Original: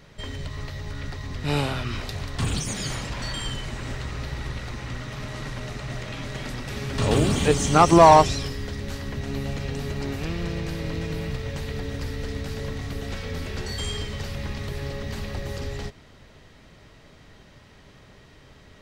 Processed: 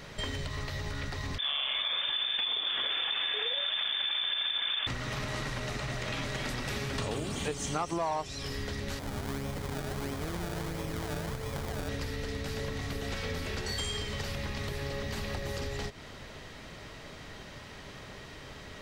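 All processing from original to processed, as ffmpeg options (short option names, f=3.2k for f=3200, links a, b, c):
-filter_complex "[0:a]asettb=1/sr,asplit=3[a][b][c];[a]atrim=end=1.384[d];[b]atrim=start=1.38:end=4.87,asetpts=PTS-STARTPTS,afade=t=in:d=0.004:c=qsin,afade=t=out:st=3.486:d=0.004:c=qsin,lowpass=f=3.1k:t=q:w=0.5098,lowpass=f=3.1k:t=q:w=0.6013,lowpass=f=3.1k:t=q:w=0.9,lowpass=f=3.1k:t=q:w=2.563,afreqshift=-3600,acompressor=threshold=-29dB:ratio=6:attack=3.2:release=140:knee=1:detection=peak[e];[c]atrim=start=4.866[f];[d][e]acrossfade=d=0.004:c1=hsin:c2=qsin[g];[g][f]acrossfade=d=0.004:c1=qsin:c2=hsin,asettb=1/sr,asplit=3[h][i][j];[h]atrim=end=8.994[k];[i]atrim=start=8.99:end=11.89,asetpts=PTS-STARTPTS,afade=t=in:d=0.004:c=qsin,afade=t=out:st=2.896:d=0.004:c=qsin,acrusher=samples=29:mix=1:aa=0.000001:lfo=1:lforange=29:lforate=1.5,bandreject=f=2.7k:w=12,flanger=delay=6.2:depth=9.2:regen=-71:speed=1.2:shape=sinusoidal[l];[j]atrim=start=11.886[m];[k][l]acrossfade=d=0.004:c1=hsin:c2=qsin[n];[n][m]acrossfade=d=0.004:c1=qsin:c2=hsin,acompressor=threshold=-35dB:ratio=12,lowshelf=f=330:g=-5.5,volume=7dB"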